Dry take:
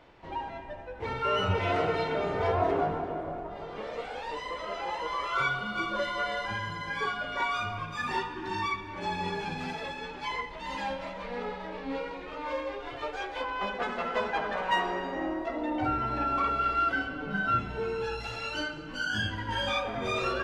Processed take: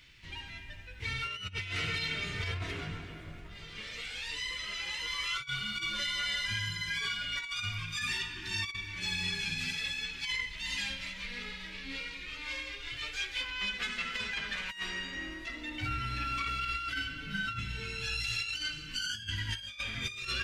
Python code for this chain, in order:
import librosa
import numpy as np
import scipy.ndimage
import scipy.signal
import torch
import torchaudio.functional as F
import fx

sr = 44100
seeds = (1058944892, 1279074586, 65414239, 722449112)

y = fx.curve_eq(x, sr, hz=(110.0, 750.0, 2200.0, 5500.0, 8900.0), db=(0, -26, 5, 9, 11))
y = fx.over_compress(y, sr, threshold_db=-34.0, ratio=-0.5)